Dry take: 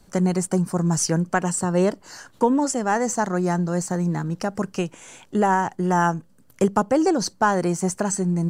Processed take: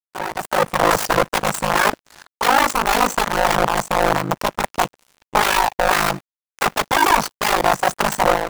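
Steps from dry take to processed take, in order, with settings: wrapped overs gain 19 dB; AGC gain up to 10 dB; bell 890 Hz +12 dB 2.2 oct; two-slope reverb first 0.53 s, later 3.6 s, from -16 dB, DRR 17.5 dB; crossover distortion -21.5 dBFS; ring modulator 26 Hz; gain -5 dB

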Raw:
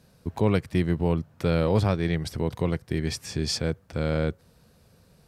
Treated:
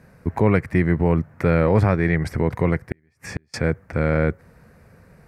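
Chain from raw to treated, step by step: resonant high shelf 2600 Hz -8.5 dB, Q 3; in parallel at +0.5 dB: limiter -18.5 dBFS, peak gain reduction 9.5 dB; 2.91–3.54 on the sum: flipped gate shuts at -18 dBFS, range -40 dB; gain +1.5 dB

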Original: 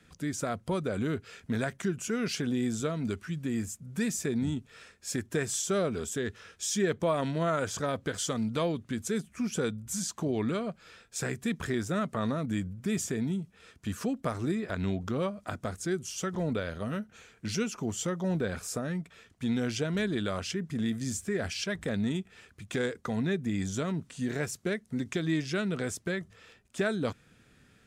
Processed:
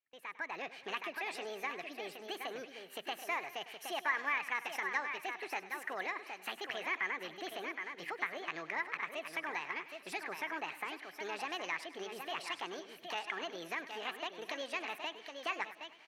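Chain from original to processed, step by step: speed mistake 45 rpm record played at 78 rpm; band-pass 1800 Hz, Q 3.6; echo 0.768 s -9 dB; AGC gain up to 14 dB; gate with hold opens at -48 dBFS; compressor 1.5:1, threshold -41 dBFS, peak gain reduction 8.5 dB; warbling echo 0.101 s, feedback 54%, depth 70 cents, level -15.5 dB; gain -2.5 dB

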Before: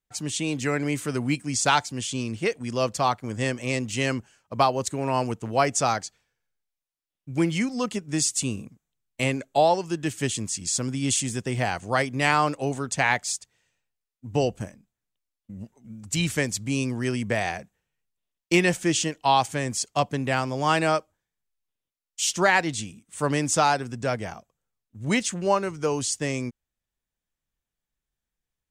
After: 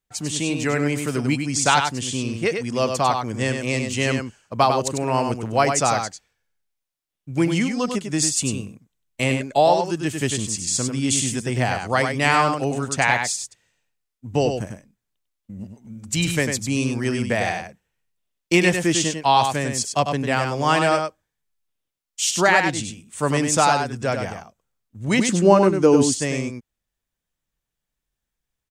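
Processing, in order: 25.19–26.16 bell 270 Hz +13 dB 1.6 oct; on a send: echo 98 ms -6 dB; on the sum: gain +3 dB

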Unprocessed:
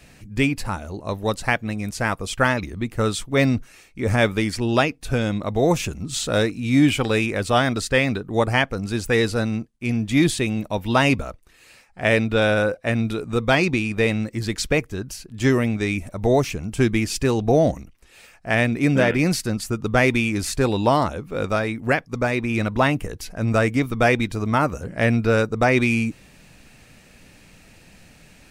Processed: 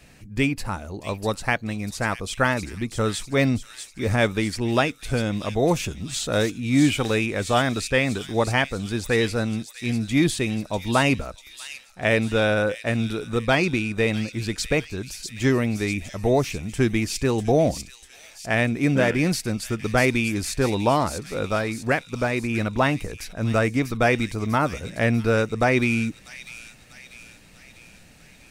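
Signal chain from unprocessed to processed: thin delay 0.645 s, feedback 54%, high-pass 3900 Hz, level -5 dB; gain -2 dB

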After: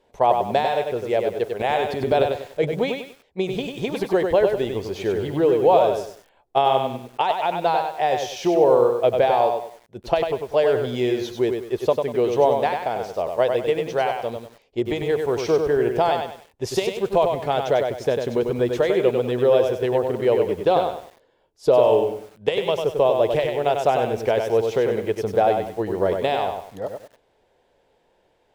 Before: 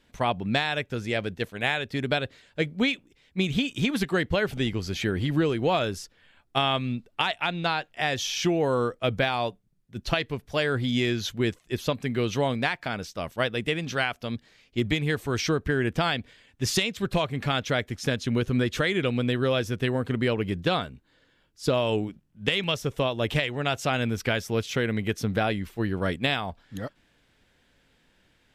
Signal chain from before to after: band shelf 600 Hz +15 dB; 1.59–2.8 transient shaper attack -2 dB, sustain +11 dB; lo-fi delay 97 ms, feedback 35%, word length 7-bit, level -5 dB; gain -5.5 dB

